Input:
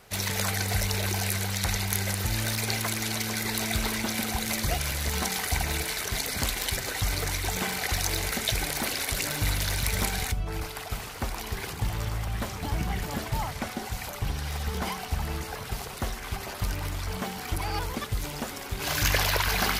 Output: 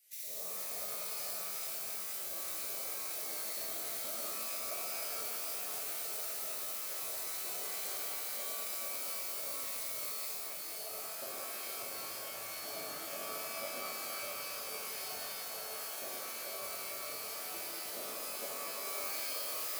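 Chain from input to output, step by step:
stylus tracing distortion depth 0.35 ms
first-order pre-emphasis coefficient 0.8
auto-filter high-pass square 2.1 Hz 640–2,100 Hz
drawn EQ curve 100 Hz 0 dB, 180 Hz +3 dB, 590 Hz −1 dB, 1,000 Hz −27 dB, 11,000 Hz −9 dB
downward compressor, threshold −45 dBFS, peak gain reduction 12 dB
reverb with rising layers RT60 3.5 s, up +12 semitones, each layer −2 dB, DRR −9.5 dB

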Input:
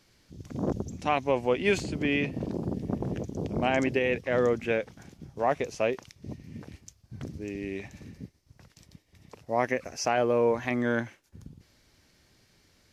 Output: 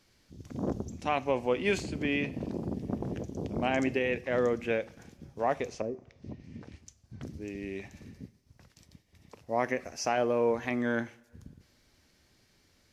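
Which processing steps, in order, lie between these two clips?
0:05.67–0:07.22: treble cut that deepens with the level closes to 390 Hz, closed at −26.5 dBFS
coupled-rooms reverb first 0.45 s, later 1.9 s, from −18 dB, DRR 15.5 dB
level −3 dB

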